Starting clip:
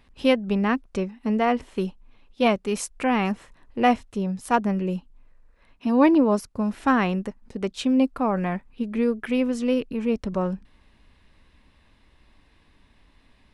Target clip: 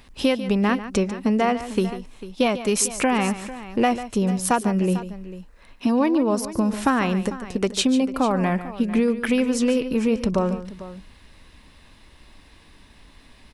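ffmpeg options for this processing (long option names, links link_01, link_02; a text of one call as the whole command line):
ffmpeg -i in.wav -filter_complex "[0:a]bass=frequency=250:gain=-1,treble=frequency=4000:gain=7,acompressor=threshold=-25dB:ratio=6,asplit=2[link_01][link_02];[link_02]aecho=0:1:145|447:0.224|0.168[link_03];[link_01][link_03]amix=inputs=2:normalize=0,volume=8dB" out.wav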